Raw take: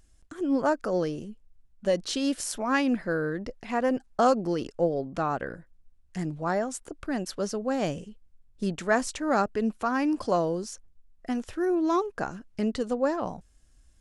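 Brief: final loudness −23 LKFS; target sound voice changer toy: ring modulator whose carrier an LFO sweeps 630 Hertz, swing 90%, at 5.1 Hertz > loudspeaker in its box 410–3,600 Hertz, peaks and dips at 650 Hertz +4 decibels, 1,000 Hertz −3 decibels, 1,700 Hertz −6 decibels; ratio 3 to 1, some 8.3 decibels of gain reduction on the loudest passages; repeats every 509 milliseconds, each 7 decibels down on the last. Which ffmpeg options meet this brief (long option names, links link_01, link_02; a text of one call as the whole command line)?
ffmpeg -i in.wav -af "acompressor=threshold=-29dB:ratio=3,aecho=1:1:509|1018|1527|2036|2545:0.447|0.201|0.0905|0.0407|0.0183,aeval=exprs='val(0)*sin(2*PI*630*n/s+630*0.9/5.1*sin(2*PI*5.1*n/s))':channel_layout=same,highpass=410,equalizer=frequency=650:width_type=q:width=4:gain=4,equalizer=frequency=1000:width_type=q:width=4:gain=-3,equalizer=frequency=1700:width_type=q:width=4:gain=-6,lowpass=frequency=3600:width=0.5412,lowpass=frequency=3600:width=1.3066,volume=15dB" out.wav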